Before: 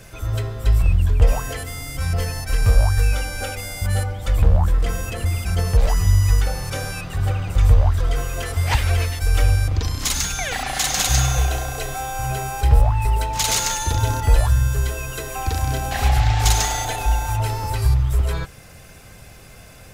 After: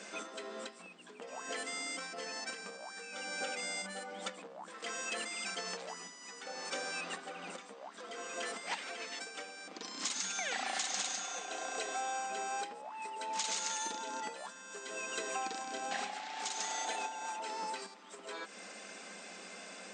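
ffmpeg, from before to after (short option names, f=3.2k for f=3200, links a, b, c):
-filter_complex "[0:a]asettb=1/sr,asplit=3[a][b][c];[a]atrim=end=4.704[d];[b]atrim=start=4.7:end=5.82,asetpts=PTS-STARTPTS,afade=t=in:d=0.004:c=qsin,afade=t=out:st=1.116:d=0.004:c=qsin,tiltshelf=f=780:g=-4.5[e];[c]atrim=start=5.816[f];[d][e]acrossfade=d=0.004:c1=hsin:c2=qsin[g];[g][f]acrossfade=d=0.004:c1=qsin:c2=hsin,lowshelf=f=430:g=-4.5,acompressor=threshold=-32dB:ratio=10,afftfilt=real='re*between(b*sr/4096,180,8900)':imag='im*between(b*sr/4096,180,8900)':win_size=4096:overlap=0.75,volume=-1dB"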